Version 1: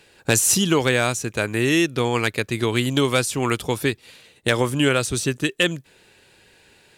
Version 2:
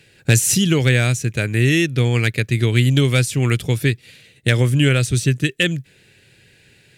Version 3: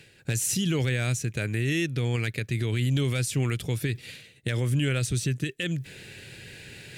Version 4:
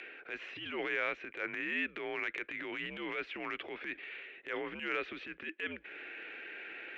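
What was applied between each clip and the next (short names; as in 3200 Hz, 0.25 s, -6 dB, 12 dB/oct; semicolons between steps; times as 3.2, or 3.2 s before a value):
graphic EQ 125/1000/2000 Hz +12/-12/+6 dB
limiter -12.5 dBFS, peak gain reduction 11 dB; reverse; upward compressor, threshold -26 dBFS; reverse; gain -5.5 dB
mistuned SSB -76 Hz 490–2700 Hz; upward compressor, threshold -40 dBFS; transient shaper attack -9 dB, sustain +6 dB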